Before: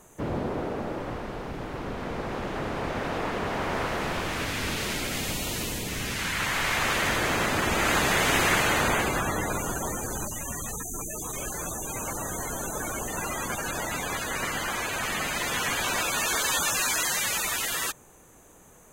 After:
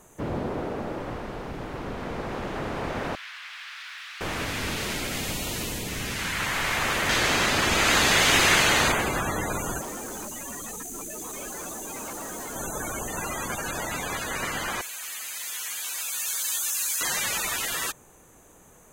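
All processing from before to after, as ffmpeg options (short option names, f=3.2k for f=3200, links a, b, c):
-filter_complex "[0:a]asettb=1/sr,asplit=3[a][b][c];[a]atrim=end=3.154[d];[b]atrim=start=3.15:end=4.21,asetpts=PTS-STARTPTS,afade=t=in:d=0.004:c=qsin,afade=t=out:st=1.056:d=0.004:c=qsin,aeval=exprs='0.0266*(abs(mod(val(0)/0.0266+3,4)-2)-1)':c=same,acrossover=split=4300[e][f];[f]acompressor=threshold=-55dB:ratio=4:attack=1:release=60[g];[e][g]amix=inputs=2:normalize=0,highpass=f=1.4k:w=0.5412,highpass=f=1.4k:w=1.3066[h];[c]atrim=start=4.206[i];[d][h]acrossfade=d=0.004:c1=hsin:c2=qsin[j];[j][i]acrossfade=d=0.004:c1=qsin:c2=hsin,asettb=1/sr,asplit=3[k][l][m];[k]atrim=end=7.094[n];[l]atrim=start=7.09:end=8.92,asetpts=PTS-STARTPTS,afade=t=in:d=0.004:c=qsin,afade=t=out:st=1.826:d=0.004:c=qsin,equalizer=f=4.4k:w=0.67:g=8,asplit=2[o][p];[p]adelay=41,volume=-10.5dB[q];[o][q]amix=inputs=2:normalize=0,atrim=end_sample=80703[r];[m]atrim=start=8.916[s];[n][r]acrossfade=d=0.004:c1=hsin:c2=qsin[t];[t][s]acrossfade=d=0.004:c1=qsin:c2=hsin,asettb=1/sr,asplit=3[u][v][w];[u]atrim=end=9.814[x];[v]atrim=start=9.81:end=12.56,asetpts=PTS-STARTPTS,afade=t=in:d=0.004:c=qsin,afade=t=out:st=2.746:d=0.004:c=qsin,lowshelf=f=170:t=q:w=1.5:g=-9,asoftclip=type=hard:threshold=-33dB[y];[w]atrim=start=12.556[z];[x][y]acrossfade=d=0.004:c1=hsin:c2=qsin[aa];[aa][z]acrossfade=d=0.004:c1=qsin:c2=hsin,asettb=1/sr,asplit=3[ab][ac][ad];[ab]atrim=end=14.814[ae];[ac]atrim=start=14.81:end=17.01,asetpts=PTS-STARTPTS,afade=t=in:d=0.004:c=qsin,afade=t=out:st=2.196:d=0.004:c=qsin,aderivative,acrusher=bits=3:mode=log:mix=0:aa=0.000001,highpass=210[af];[ad]atrim=start=17.006[ag];[ae][af]acrossfade=d=0.004:c1=hsin:c2=qsin[ah];[ah][ag]acrossfade=d=0.004:c1=qsin:c2=hsin"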